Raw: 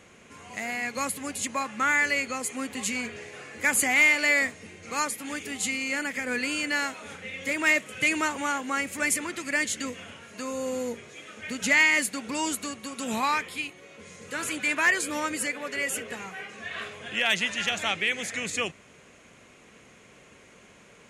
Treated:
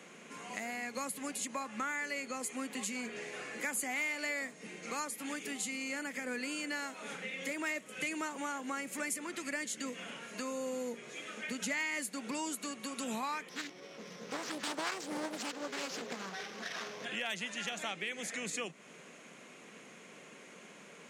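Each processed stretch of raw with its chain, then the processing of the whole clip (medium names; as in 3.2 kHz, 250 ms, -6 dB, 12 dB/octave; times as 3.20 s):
13.49–17.05 s: sorted samples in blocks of 8 samples + distance through air 95 m + loudspeaker Doppler distortion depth 0.85 ms
whole clip: steep high-pass 150 Hz 48 dB/octave; dynamic bell 2.4 kHz, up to -4 dB, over -36 dBFS, Q 0.79; compression 2.5:1, threshold -39 dBFS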